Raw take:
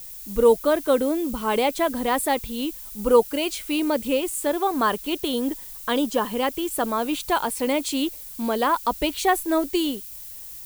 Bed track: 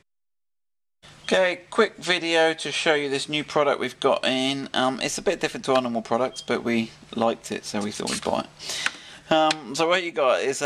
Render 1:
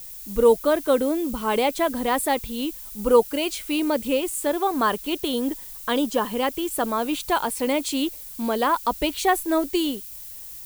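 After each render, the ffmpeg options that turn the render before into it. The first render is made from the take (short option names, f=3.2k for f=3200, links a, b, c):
-af anull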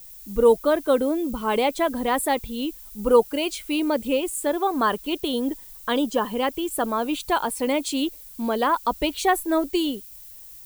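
-af "afftdn=nr=6:nf=-39"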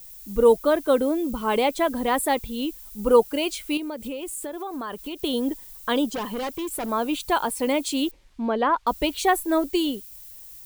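-filter_complex "[0:a]asettb=1/sr,asplit=3[a][b][c];[a]atrim=end=3.774[d];[b]atrim=start=3.77:end=5.23,asetpts=PTS-STARTPTS,afade=t=in:d=0.004:c=qsin,afade=t=out:st=1.456:d=0.004:c=qsin,acompressor=threshold=-29dB:ratio=6:attack=3.2:release=140:knee=1:detection=peak[e];[c]atrim=start=5.226[f];[d][e]acrossfade=d=0.004:c1=hsin:c2=qsin[g];[g][f]acrossfade=d=0.004:c1=qsin:c2=hsin,asettb=1/sr,asplit=3[h][i][j];[h]atrim=end=6.124[k];[i]atrim=start=6.12:end=6.89,asetpts=PTS-STARTPTS,afade=t=in:d=0.004:c=qsin,afade=t=out:st=0.766:d=0.004:c=qsin,asoftclip=type=hard:threshold=-26.5dB[l];[j]atrim=start=6.886[m];[k][l]acrossfade=d=0.004:c1=hsin:c2=qsin[n];[n][m]acrossfade=d=0.004:c1=qsin:c2=hsin,asettb=1/sr,asplit=3[o][p][q];[o]atrim=end=8.114[r];[p]atrim=start=8.11:end=8.87,asetpts=PTS-STARTPTS,afade=t=in:d=0.004:c=qsin,afade=t=out:st=0.756:d=0.004:c=qsin,lowpass=2.7k[s];[q]atrim=start=8.866[t];[r][s]acrossfade=d=0.004:c1=hsin:c2=qsin[u];[u][t]acrossfade=d=0.004:c1=qsin:c2=hsin"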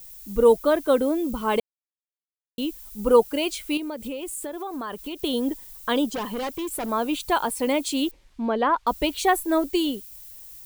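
-filter_complex "[0:a]asplit=3[a][b][c];[a]atrim=end=1.6,asetpts=PTS-STARTPTS,afade=t=out:st=1.596:d=0.004:c=hsin[d];[b]atrim=start=1.6:end=2.58,asetpts=PTS-STARTPTS,volume=0[e];[c]atrim=start=2.58,asetpts=PTS-STARTPTS,afade=t=in:d=0.004:c=hsin[f];[d][e][f]concat=n=3:v=0:a=1"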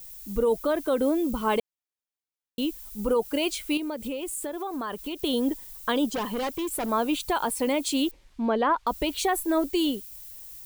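-af "alimiter=limit=-15.5dB:level=0:latency=1:release=60"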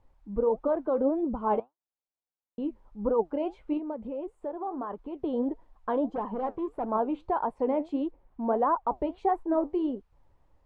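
-af "flanger=delay=2.6:depth=7.9:regen=72:speed=1.6:shape=triangular,lowpass=f=860:t=q:w=1.7"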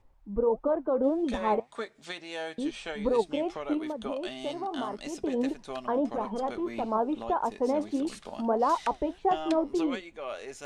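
-filter_complex "[1:a]volume=-17dB[a];[0:a][a]amix=inputs=2:normalize=0"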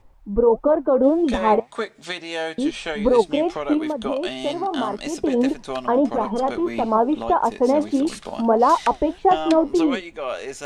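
-af "volume=9.5dB"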